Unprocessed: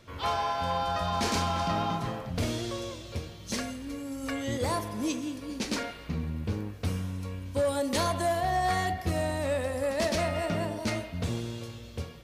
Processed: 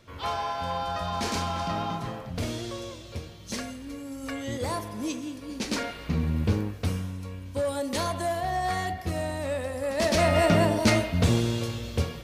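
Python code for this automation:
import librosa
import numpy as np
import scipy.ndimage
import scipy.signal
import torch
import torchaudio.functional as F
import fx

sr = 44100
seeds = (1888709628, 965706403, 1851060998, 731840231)

y = fx.gain(x, sr, db=fx.line((5.4, -1.0), (6.42, 8.0), (7.19, -1.0), (9.83, -1.0), (10.38, 9.5)))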